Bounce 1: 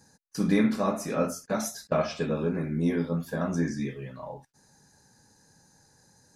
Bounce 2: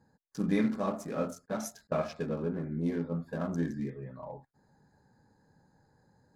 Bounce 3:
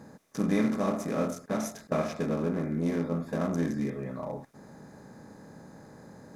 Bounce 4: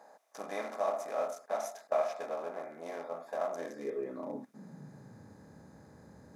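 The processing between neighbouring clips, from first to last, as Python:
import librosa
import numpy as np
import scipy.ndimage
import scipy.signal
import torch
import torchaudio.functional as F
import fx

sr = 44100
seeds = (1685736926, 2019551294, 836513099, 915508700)

y1 = fx.wiener(x, sr, points=15)
y1 = fx.rider(y1, sr, range_db=4, speed_s=2.0)
y1 = y1 * 10.0 ** (-6.0 / 20.0)
y2 = fx.bin_compress(y1, sr, power=0.6)
y3 = fx.filter_sweep_highpass(y2, sr, from_hz=690.0, to_hz=67.0, start_s=3.51, end_s=5.51, q=3.8)
y3 = y3 * 10.0 ** (-7.0 / 20.0)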